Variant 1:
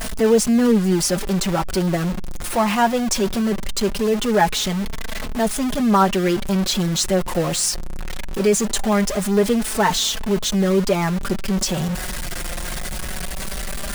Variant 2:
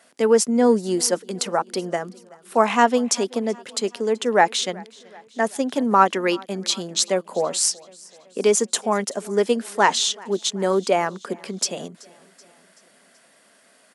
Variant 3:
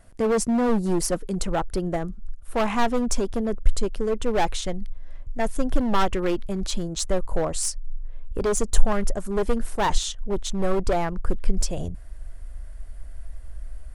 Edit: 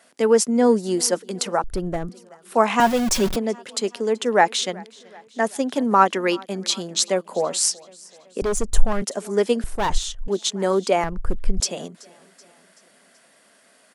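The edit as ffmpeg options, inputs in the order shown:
-filter_complex "[2:a]asplit=4[s0][s1][s2][s3];[1:a]asplit=6[s4][s5][s6][s7][s8][s9];[s4]atrim=end=1.642[s10];[s0]atrim=start=1.638:end=2.092[s11];[s5]atrim=start=2.088:end=2.802[s12];[0:a]atrim=start=2.798:end=3.362[s13];[s6]atrim=start=3.358:end=8.422[s14];[s1]atrim=start=8.418:end=9.022[s15];[s7]atrim=start=9.018:end=9.642[s16];[s2]atrim=start=9.638:end=10.282[s17];[s8]atrim=start=10.278:end=11.042[s18];[s3]atrim=start=11.038:end=11.602[s19];[s9]atrim=start=11.598[s20];[s10][s11]acrossfade=d=0.004:c1=hsin:c2=hsin[s21];[s21][s12]acrossfade=d=0.004:c1=hsin:c2=hsin[s22];[s22][s13]acrossfade=d=0.004:c1=hsin:c2=hsin[s23];[s23][s14]acrossfade=d=0.004:c1=hsin:c2=hsin[s24];[s24][s15]acrossfade=d=0.004:c1=hsin:c2=hsin[s25];[s25][s16]acrossfade=d=0.004:c1=hsin:c2=hsin[s26];[s26][s17]acrossfade=d=0.004:c1=hsin:c2=hsin[s27];[s27][s18]acrossfade=d=0.004:c1=hsin:c2=hsin[s28];[s28][s19]acrossfade=d=0.004:c1=hsin:c2=hsin[s29];[s29][s20]acrossfade=d=0.004:c1=hsin:c2=hsin"

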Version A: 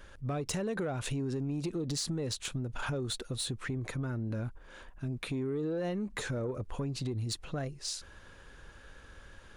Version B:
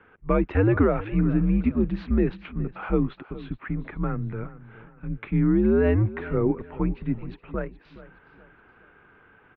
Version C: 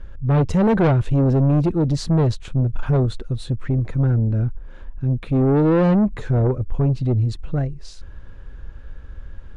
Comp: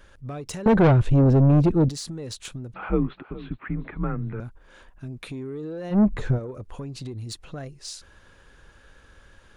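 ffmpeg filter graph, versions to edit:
-filter_complex "[2:a]asplit=2[s0][s1];[0:a]asplit=4[s2][s3][s4][s5];[s2]atrim=end=0.662[s6];[s0]atrim=start=0.658:end=1.892[s7];[s3]atrim=start=1.888:end=2.742[s8];[1:a]atrim=start=2.738:end=4.402[s9];[s4]atrim=start=4.398:end=6[s10];[s1]atrim=start=5.9:end=6.4[s11];[s5]atrim=start=6.3[s12];[s6][s7]acrossfade=d=0.004:c1=hsin:c2=hsin[s13];[s13][s8]acrossfade=d=0.004:c1=hsin:c2=hsin[s14];[s14][s9]acrossfade=d=0.004:c1=hsin:c2=hsin[s15];[s15][s10]acrossfade=d=0.004:c1=hsin:c2=hsin[s16];[s16][s11]acrossfade=d=0.1:c1=tri:c2=tri[s17];[s17][s12]acrossfade=d=0.1:c1=tri:c2=tri"

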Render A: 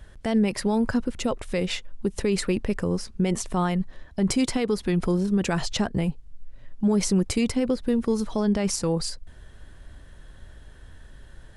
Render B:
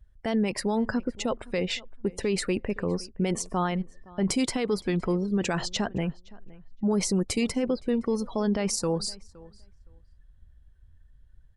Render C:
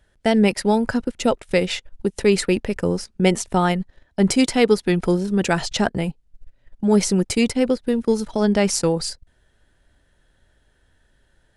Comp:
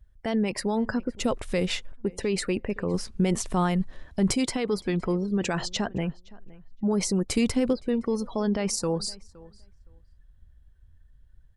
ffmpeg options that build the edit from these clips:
-filter_complex "[0:a]asplit=3[s0][s1][s2];[1:a]asplit=4[s3][s4][s5][s6];[s3]atrim=end=1.202[s7];[s0]atrim=start=1.198:end=1.922[s8];[s4]atrim=start=1.918:end=2.942[s9];[s1]atrim=start=2.938:end=4.342[s10];[s5]atrim=start=4.338:end=7.312[s11];[s2]atrim=start=7.308:end=7.732[s12];[s6]atrim=start=7.728[s13];[s7][s8]acrossfade=d=0.004:c1=hsin:c2=hsin[s14];[s14][s9]acrossfade=d=0.004:c1=hsin:c2=hsin[s15];[s15][s10]acrossfade=d=0.004:c1=hsin:c2=hsin[s16];[s16][s11]acrossfade=d=0.004:c1=hsin:c2=hsin[s17];[s17][s12]acrossfade=d=0.004:c1=hsin:c2=hsin[s18];[s18][s13]acrossfade=d=0.004:c1=hsin:c2=hsin"

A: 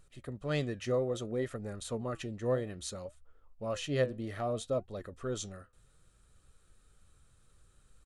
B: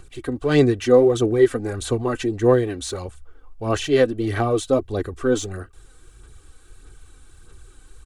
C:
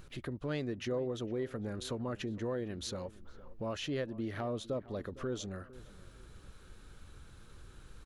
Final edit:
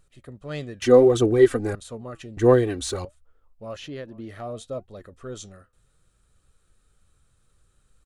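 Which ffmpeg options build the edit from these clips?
-filter_complex "[1:a]asplit=2[s0][s1];[0:a]asplit=4[s2][s3][s4][s5];[s2]atrim=end=0.822[s6];[s0]atrim=start=0.818:end=1.752[s7];[s3]atrim=start=1.748:end=2.372[s8];[s1]atrim=start=2.368:end=3.052[s9];[s4]atrim=start=3.048:end=3.762[s10];[2:a]atrim=start=3.758:end=4.292[s11];[s5]atrim=start=4.288[s12];[s6][s7]acrossfade=d=0.004:c1=hsin:c2=hsin[s13];[s13][s8]acrossfade=d=0.004:c1=hsin:c2=hsin[s14];[s14][s9]acrossfade=d=0.004:c1=hsin:c2=hsin[s15];[s15][s10]acrossfade=d=0.004:c1=hsin:c2=hsin[s16];[s16][s11]acrossfade=d=0.004:c1=hsin:c2=hsin[s17];[s17][s12]acrossfade=d=0.004:c1=hsin:c2=hsin"

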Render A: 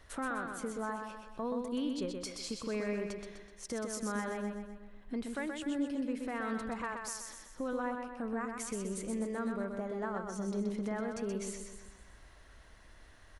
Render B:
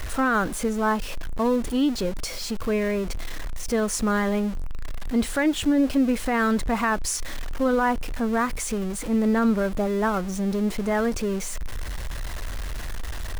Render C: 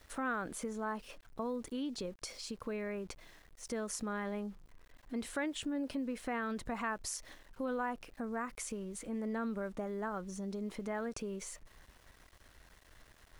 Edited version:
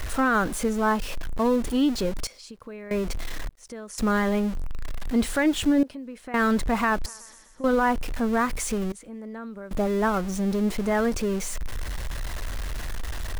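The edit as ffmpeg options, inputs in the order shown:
-filter_complex "[2:a]asplit=4[s0][s1][s2][s3];[1:a]asplit=6[s4][s5][s6][s7][s8][s9];[s4]atrim=end=2.272[s10];[s0]atrim=start=2.268:end=2.912[s11];[s5]atrim=start=2.908:end=3.492[s12];[s1]atrim=start=3.488:end=3.982[s13];[s6]atrim=start=3.978:end=5.832[s14];[s2]atrim=start=5.828:end=6.342[s15];[s7]atrim=start=6.338:end=7.062[s16];[0:a]atrim=start=7.058:end=7.642[s17];[s8]atrim=start=7.638:end=8.922[s18];[s3]atrim=start=8.918:end=9.712[s19];[s9]atrim=start=9.708[s20];[s10][s11]acrossfade=d=0.004:c1=hsin:c2=hsin[s21];[s21][s12]acrossfade=d=0.004:c1=hsin:c2=hsin[s22];[s22][s13]acrossfade=d=0.004:c1=hsin:c2=hsin[s23];[s23][s14]acrossfade=d=0.004:c1=hsin:c2=hsin[s24];[s24][s15]acrossfade=d=0.004:c1=hsin:c2=hsin[s25];[s25][s16]acrossfade=d=0.004:c1=hsin:c2=hsin[s26];[s26][s17]acrossfade=d=0.004:c1=hsin:c2=hsin[s27];[s27][s18]acrossfade=d=0.004:c1=hsin:c2=hsin[s28];[s28][s19]acrossfade=d=0.004:c1=hsin:c2=hsin[s29];[s29][s20]acrossfade=d=0.004:c1=hsin:c2=hsin"

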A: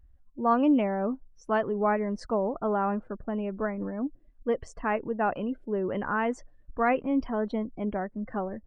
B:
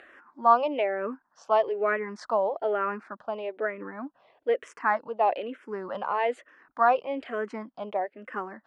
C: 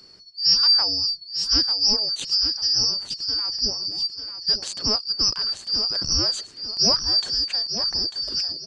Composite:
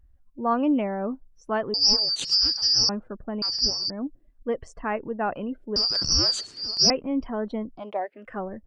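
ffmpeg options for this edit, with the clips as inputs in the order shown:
-filter_complex "[2:a]asplit=3[s0][s1][s2];[0:a]asplit=5[s3][s4][s5][s6][s7];[s3]atrim=end=1.742[s8];[s0]atrim=start=1.738:end=2.892[s9];[s4]atrim=start=2.888:end=3.422[s10];[s1]atrim=start=3.418:end=3.902[s11];[s5]atrim=start=3.898:end=5.762[s12];[s2]atrim=start=5.758:end=6.902[s13];[s6]atrim=start=6.898:end=7.86[s14];[1:a]atrim=start=7.7:end=8.4[s15];[s7]atrim=start=8.24[s16];[s8][s9]acrossfade=d=0.004:c1=hsin:c2=hsin[s17];[s17][s10]acrossfade=d=0.004:c1=hsin:c2=hsin[s18];[s18][s11]acrossfade=d=0.004:c1=hsin:c2=hsin[s19];[s19][s12]acrossfade=d=0.004:c1=hsin:c2=hsin[s20];[s20][s13]acrossfade=d=0.004:c1=hsin:c2=hsin[s21];[s21][s14]acrossfade=d=0.004:c1=hsin:c2=hsin[s22];[s22][s15]acrossfade=d=0.16:c1=tri:c2=tri[s23];[s23][s16]acrossfade=d=0.16:c1=tri:c2=tri"

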